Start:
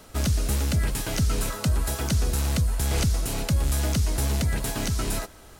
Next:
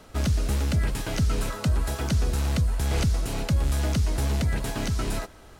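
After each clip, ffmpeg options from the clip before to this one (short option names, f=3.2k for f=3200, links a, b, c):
-af "highshelf=f=6.4k:g=-10"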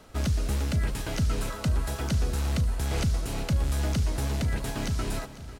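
-af "aecho=1:1:498|996|1494|1992|2490:0.158|0.0903|0.0515|0.0294|0.0167,volume=-2.5dB"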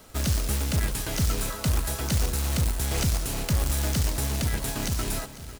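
-af "crystalizer=i=1.5:c=0,acrusher=bits=2:mode=log:mix=0:aa=0.000001"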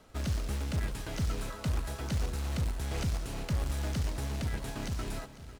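-af "aemphasis=mode=reproduction:type=50kf,volume=-6.5dB"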